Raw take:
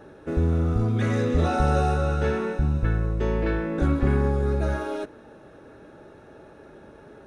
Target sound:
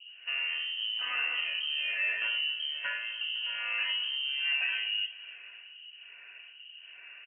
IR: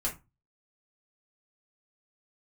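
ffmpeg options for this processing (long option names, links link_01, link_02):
-filter_complex "[0:a]acrossover=split=410[link_01][link_02];[link_01]aeval=exprs='val(0)*(1-1/2+1/2*cos(2*PI*1.2*n/s))':channel_layout=same[link_03];[link_02]aeval=exprs='val(0)*(1-1/2-1/2*cos(2*PI*1.2*n/s))':channel_layout=same[link_04];[link_03][link_04]amix=inputs=2:normalize=0,alimiter=level_in=0.5dB:limit=-24dB:level=0:latency=1:release=219,volume=-0.5dB,lowshelf=frequency=200:width_type=q:width=1.5:gain=-8.5,aecho=1:1:253|506|759|1012:0.15|0.0718|0.0345|0.0165,asplit=2[link_05][link_06];[1:a]atrim=start_sample=2205[link_07];[link_06][link_07]afir=irnorm=-1:irlink=0,volume=-12.5dB[link_08];[link_05][link_08]amix=inputs=2:normalize=0,lowpass=frequency=2700:width_type=q:width=0.5098,lowpass=frequency=2700:width_type=q:width=0.6013,lowpass=frequency=2700:width_type=q:width=0.9,lowpass=frequency=2700:width_type=q:width=2.563,afreqshift=-3200"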